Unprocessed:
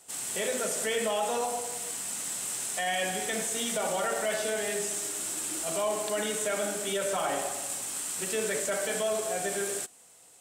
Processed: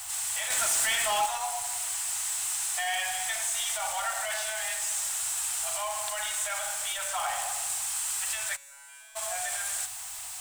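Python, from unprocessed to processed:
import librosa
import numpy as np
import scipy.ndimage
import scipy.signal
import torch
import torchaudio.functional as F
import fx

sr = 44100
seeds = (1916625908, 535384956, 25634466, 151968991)

y = x + 0.5 * 10.0 ** (-34.0 / 20.0) * np.sign(x)
y = scipy.signal.sosfilt(scipy.signal.ellip(3, 1.0, 40, [100.0, 780.0], 'bandstop', fs=sr, output='sos'), y)
y = fx.leveller(y, sr, passes=2, at=(0.5, 1.26))
y = fx.comb_fb(y, sr, f0_hz=140.0, decay_s=1.5, harmonics='all', damping=0.0, mix_pct=100, at=(8.55, 9.15), fade=0.02)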